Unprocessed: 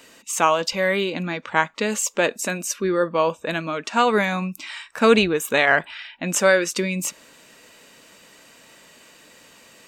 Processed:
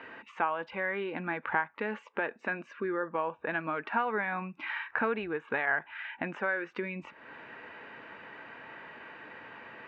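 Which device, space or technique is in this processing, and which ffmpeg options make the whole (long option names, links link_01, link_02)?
bass amplifier: -af "acompressor=threshold=-36dB:ratio=4,highpass=90,equalizer=frequency=180:width_type=q:width=4:gain=-7,equalizer=frequency=260:width_type=q:width=4:gain=-3,equalizer=frequency=570:width_type=q:width=4:gain=-5,equalizer=frequency=850:width_type=q:width=4:gain=6,equalizer=frequency=1600:width_type=q:width=4:gain=6,lowpass=frequency=2300:width=0.5412,lowpass=frequency=2300:width=1.3066,volume=4dB"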